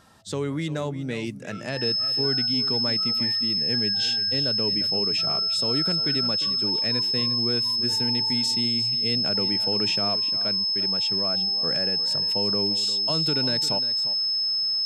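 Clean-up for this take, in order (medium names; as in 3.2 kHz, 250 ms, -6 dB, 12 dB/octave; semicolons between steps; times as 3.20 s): band-stop 5.2 kHz, Q 30; inverse comb 350 ms -14 dB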